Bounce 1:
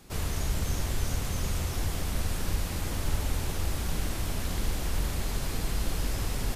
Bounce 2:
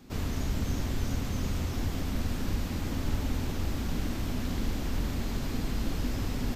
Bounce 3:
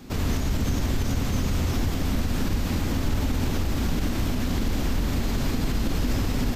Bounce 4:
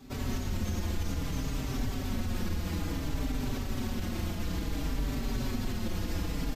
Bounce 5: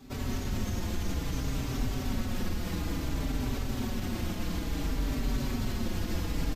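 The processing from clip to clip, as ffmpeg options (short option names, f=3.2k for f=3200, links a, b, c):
-af "equalizer=f=100:t=o:w=0.67:g=3,equalizer=f=250:t=o:w=0.67:g=11,equalizer=f=10k:t=o:w=0.67:g=-11,volume=-2.5dB"
-af "alimiter=level_in=1dB:limit=-24dB:level=0:latency=1:release=55,volume=-1dB,volume=9dB"
-filter_complex "[0:a]asplit=2[a][b];[b]adelay=4.7,afreqshift=-0.58[c];[a][c]amix=inputs=2:normalize=1,volume=-4.5dB"
-af "aecho=1:1:265:0.531"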